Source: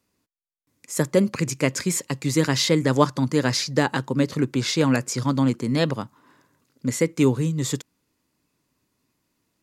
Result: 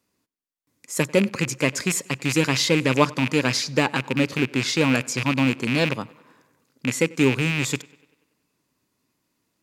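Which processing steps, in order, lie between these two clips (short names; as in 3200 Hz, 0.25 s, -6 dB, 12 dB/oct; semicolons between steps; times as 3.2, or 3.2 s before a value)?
rattling part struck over -26 dBFS, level -14 dBFS; low shelf 79 Hz -8 dB; tape echo 96 ms, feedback 61%, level -22.5 dB, low-pass 4900 Hz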